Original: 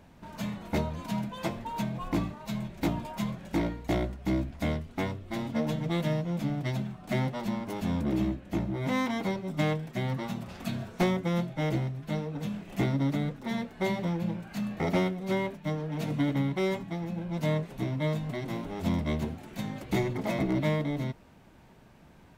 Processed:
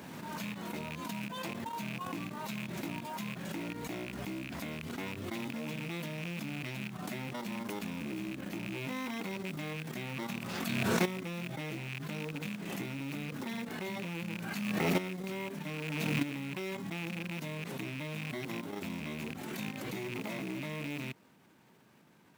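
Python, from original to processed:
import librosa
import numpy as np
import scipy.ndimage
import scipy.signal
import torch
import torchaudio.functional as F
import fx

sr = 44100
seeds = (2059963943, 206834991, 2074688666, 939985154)

y = fx.rattle_buzz(x, sr, strikes_db=-34.0, level_db=-27.0)
y = fx.high_shelf(y, sr, hz=11000.0, db=5.5)
y = fx.level_steps(y, sr, step_db=12)
y = scipy.signal.sosfilt(scipy.signal.bessel(4, 180.0, 'highpass', norm='mag', fs=sr, output='sos'), y)
y = fx.peak_eq(y, sr, hz=660.0, db=-5.5, octaves=0.76)
y = fx.quant_float(y, sr, bits=2)
y = fx.pre_swell(y, sr, db_per_s=25.0)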